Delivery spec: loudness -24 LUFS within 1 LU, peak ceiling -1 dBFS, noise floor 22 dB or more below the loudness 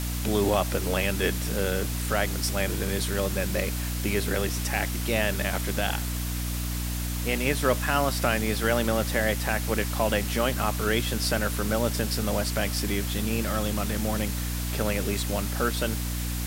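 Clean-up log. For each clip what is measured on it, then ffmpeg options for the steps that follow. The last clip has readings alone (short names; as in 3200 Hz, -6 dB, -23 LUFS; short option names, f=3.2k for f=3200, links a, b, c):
hum 60 Hz; harmonics up to 300 Hz; hum level -28 dBFS; noise floor -30 dBFS; noise floor target -49 dBFS; loudness -27.0 LUFS; peak -9.0 dBFS; loudness target -24.0 LUFS
-> -af "bandreject=f=60:t=h:w=6,bandreject=f=120:t=h:w=6,bandreject=f=180:t=h:w=6,bandreject=f=240:t=h:w=6,bandreject=f=300:t=h:w=6"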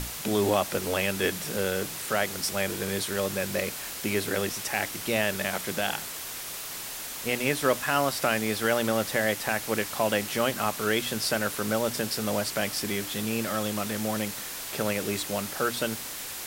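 hum none; noise floor -37 dBFS; noise floor target -50 dBFS
-> -af "afftdn=nr=13:nf=-37"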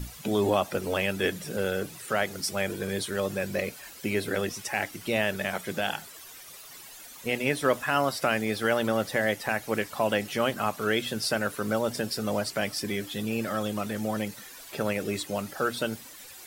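noise floor -47 dBFS; noise floor target -51 dBFS
-> -af "afftdn=nr=6:nf=-47"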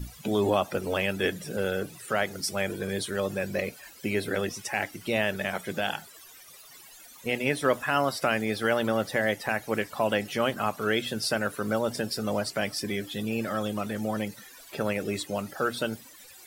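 noise floor -50 dBFS; noise floor target -51 dBFS
-> -af "afftdn=nr=6:nf=-50"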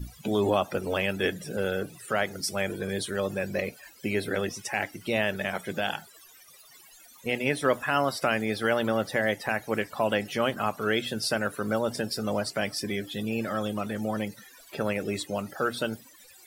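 noise floor -53 dBFS; loudness -29.0 LUFS; peak -10.5 dBFS; loudness target -24.0 LUFS
-> -af "volume=5dB"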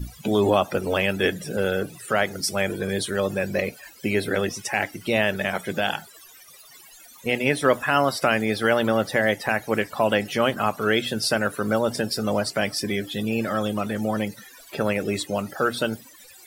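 loudness -24.0 LUFS; peak -5.5 dBFS; noise floor -48 dBFS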